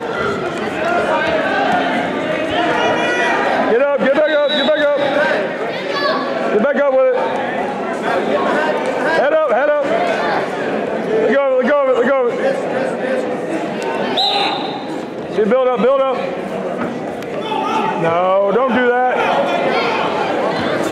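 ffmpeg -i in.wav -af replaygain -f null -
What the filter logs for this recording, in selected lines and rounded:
track_gain = -2.9 dB
track_peak = 0.382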